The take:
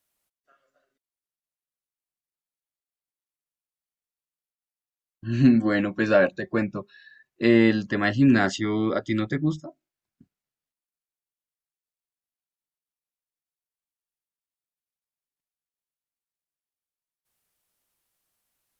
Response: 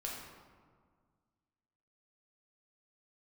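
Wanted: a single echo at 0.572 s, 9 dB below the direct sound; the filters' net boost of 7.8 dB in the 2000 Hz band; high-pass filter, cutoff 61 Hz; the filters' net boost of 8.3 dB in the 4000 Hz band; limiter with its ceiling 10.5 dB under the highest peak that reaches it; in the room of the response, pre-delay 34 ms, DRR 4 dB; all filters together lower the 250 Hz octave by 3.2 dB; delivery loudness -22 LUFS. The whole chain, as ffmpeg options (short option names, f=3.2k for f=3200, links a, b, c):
-filter_complex "[0:a]highpass=61,equalizer=f=250:t=o:g=-4,equalizer=f=2k:t=o:g=8,equalizer=f=4k:t=o:g=7.5,alimiter=limit=-14dB:level=0:latency=1,aecho=1:1:572:0.355,asplit=2[a][b];[1:a]atrim=start_sample=2205,adelay=34[c];[b][c]afir=irnorm=-1:irlink=0,volume=-4.5dB[d];[a][d]amix=inputs=2:normalize=0,volume=2.5dB"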